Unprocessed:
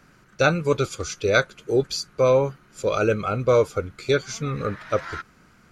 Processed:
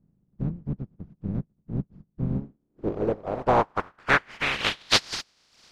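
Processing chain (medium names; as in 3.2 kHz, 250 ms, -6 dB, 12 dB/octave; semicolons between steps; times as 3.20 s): spectral contrast reduction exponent 0.11; reverb removal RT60 0.77 s; low-pass sweep 180 Hz -> 4.9 kHz, 2.28–5.05 s; trim +2.5 dB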